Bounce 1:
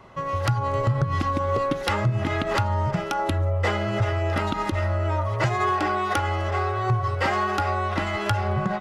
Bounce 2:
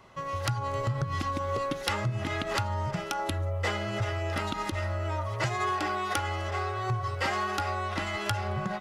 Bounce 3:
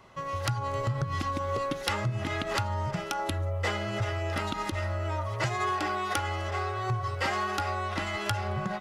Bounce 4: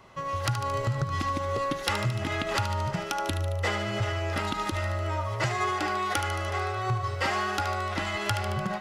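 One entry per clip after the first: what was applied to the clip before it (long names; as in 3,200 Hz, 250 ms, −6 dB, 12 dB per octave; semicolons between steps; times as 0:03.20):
high-shelf EQ 2,600 Hz +9 dB; level −7.5 dB
no processing that can be heard
feedback echo with a high-pass in the loop 74 ms, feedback 70%, high-pass 1,200 Hz, level −8 dB; level +1.5 dB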